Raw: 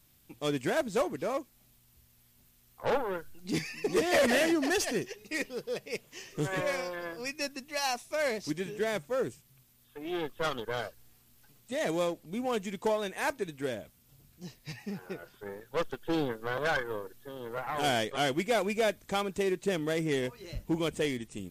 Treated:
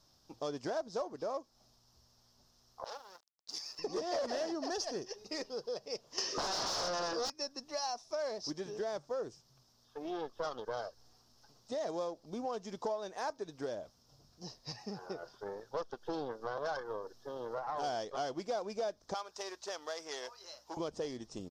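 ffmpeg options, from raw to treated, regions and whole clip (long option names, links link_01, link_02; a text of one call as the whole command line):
ffmpeg -i in.wav -filter_complex "[0:a]asettb=1/sr,asplit=3[link_01][link_02][link_03];[link_01]atrim=end=2.844[link_04];[link_02]atrim=start=2.84:end=3.79,asetpts=PTS-STARTPTS,afade=type=in:duration=0.004:curve=qsin,afade=type=out:start_time=0.946:duration=0.004:curve=qsin,aderivative,aeval=exprs='val(0)*gte(abs(val(0)),0.00376)':channel_layout=same[link_05];[link_03]atrim=start=3.786[link_06];[link_04][link_05]acrossfade=duration=0.004:curve1=hsin:curve2=qsin[link_07];[link_07][link_06]acrossfade=duration=0.004:curve1=qsin:curve2=hsin,asettb=1/sr,asplit=3[link_08][link_09][link_10];[link_08]atrim=end=6.184[link_11];[link_09]atrim=start=6.18:end=7.3,asetpts=PTS-STARTPTS,afade=type=in:duration=0.004:curve=qsin,afade=type=out:start_time=1.116:duration=0.004:curve=qsin,highpass=240,lowpass=7300,equalizer=frequency=750:width=2.7:gain=-10.5,aeval=exprs='0.0794*sin(PI/2*8.91*val(0)/0.0794)':channel_layout=same[link_12];[link_10]atrim=start=7.296[link_13];[link_11][link_12]acrossfade=duration=0.004:curve1=hsin:curve2=qsin[link_14];[link_14][link_13]acrossfade=duration=0.004:curve1=qsin:curve2=hsin,asettb=1/sr,asplit=3[link_15][link_16][link_17];[link_15]atrim=end=19.144[link_18];[link_16]atrim=start=19.14:end=20.77,asetpts=PTS-STARTPTS,afade=type=in:duration=0.004:curve=qsin,afade=type=out:start_time=1.626:duration=0.004:curve=qsin,highpass=940,highshelf=frequency=11000:gain=4,aeval=exprs='val(0)+0.000224*(sin(2*PI*60*n/s)+sin(2*PI*2*60*n/s)/2+sin(2*PI*3*60*n/s)/3+sin(2*PI*4*60*n/s)/4+sin(2*PI*5*60*n/s)/5)':channel_layout=same[link_19];[link_17]atrim=start=20.766[link_20];[link_18][link_19]acrossfade=duration=0.004:curve1=hsin:curve2=qsin[link_21];[link_21][link_20]acrossfade=duration=0.004:curve1=qsin:curve2=hsin,firequalizer=gain_entry='entry(180,0);entry(380,5);entry(650,11);entry(1100,9);entry(2200,-8);entry(5300,15);entry(7700,-6);entry(11000,-13)':delay=0.05:min_phase=1,acompressor=threshold=-32dB:ratio=3,volume=-5.5dB" out.wav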